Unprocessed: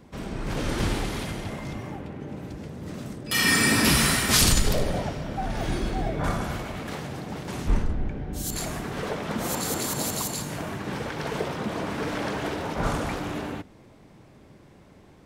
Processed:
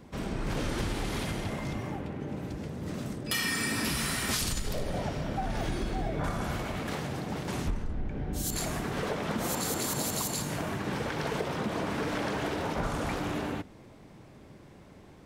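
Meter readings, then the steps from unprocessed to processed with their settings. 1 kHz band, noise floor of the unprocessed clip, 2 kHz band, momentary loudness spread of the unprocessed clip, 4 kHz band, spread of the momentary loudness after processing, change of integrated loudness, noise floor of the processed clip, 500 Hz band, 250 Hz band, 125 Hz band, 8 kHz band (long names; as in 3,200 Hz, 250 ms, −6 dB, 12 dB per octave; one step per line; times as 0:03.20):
−4.0 dB, −52 dBFS, −7.0 dB, 17 LU, −7.5 dB, 8 LU, −6.0 dB, −52 dBFS, −3.5 dB, −4.0 dB, −4.5 dB, −7.0 dB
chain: downward compressor 12 to 1, threshold −27 dBFS, peak gain reduction 13 dB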